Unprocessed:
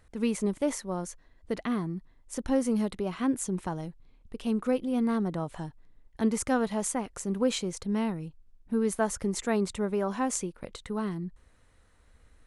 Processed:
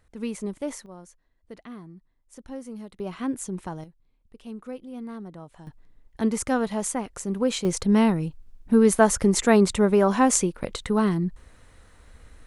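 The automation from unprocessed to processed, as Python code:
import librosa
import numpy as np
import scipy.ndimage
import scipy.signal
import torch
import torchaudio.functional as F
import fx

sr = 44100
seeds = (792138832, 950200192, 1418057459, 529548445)

y = fx.gain(x, sr, db=fx.steps((0.0, -3.0), (0.86, -11.0), (3.0, -1.0), (3.84, -9.5), (5.67, 2.5), (7.65, 10.0)))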